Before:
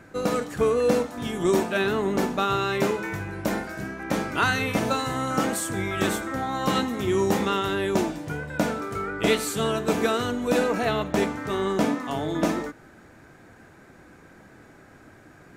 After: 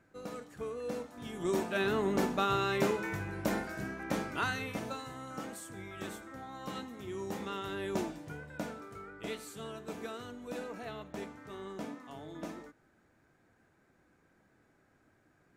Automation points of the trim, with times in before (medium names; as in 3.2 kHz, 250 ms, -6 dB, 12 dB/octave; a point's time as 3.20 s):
0.80 s -18 dB
1.94 s -6 dB
3.93 s -6 dB
5.17 s -17.5 dB
7.17 s -17.5 dB
7.98 s -10.5 dB
9.20 s -18.5 dB